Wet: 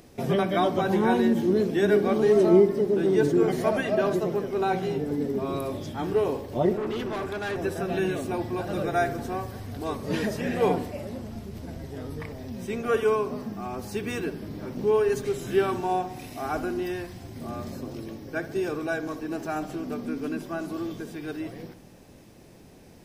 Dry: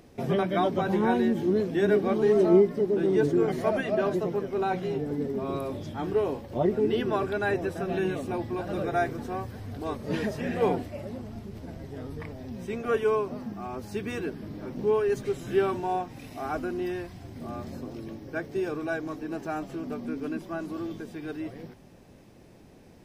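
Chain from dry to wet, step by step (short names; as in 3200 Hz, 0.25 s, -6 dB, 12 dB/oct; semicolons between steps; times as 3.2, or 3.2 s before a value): high shelf 4400 Hz +7 dB; 6.73–7.58 tube stage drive 29 dB, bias 0.4; darkening echo 65 ms, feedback 61%, level -12.5 dB; gain +1.5 dB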